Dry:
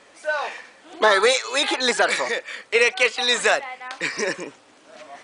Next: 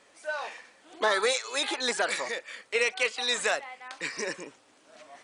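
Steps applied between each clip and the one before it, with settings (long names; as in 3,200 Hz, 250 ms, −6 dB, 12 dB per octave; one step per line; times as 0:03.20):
high-shelf EQ 7,100 Hz +6.5 dB
level −9 dB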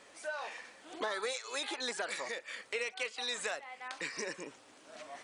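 downward compressor 2.5 to 1, threshold −42 dBFS, peak gain reduction 14.5 dB
level +2 dB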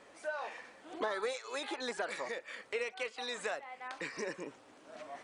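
high-shelf EQ 2,200 Hz −10 dB
level +2.5 dB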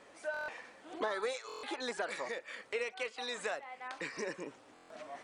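buffer that repeats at 0:00.32/0:01.47/0:04.74, samples 1,024, times 6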